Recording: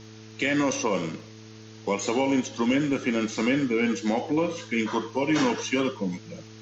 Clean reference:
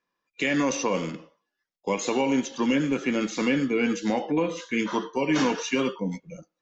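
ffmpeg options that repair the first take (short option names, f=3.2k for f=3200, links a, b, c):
-af "adeclick=t=4,bandreject=f=109.4:t=h:w=4,bandreject=f=218.8:t=h:w=4,bandreject=f=328.2:t=h:w=4,bandreject=f=437.6:t=h:w=4,afftdn=nr=30:nf=-45"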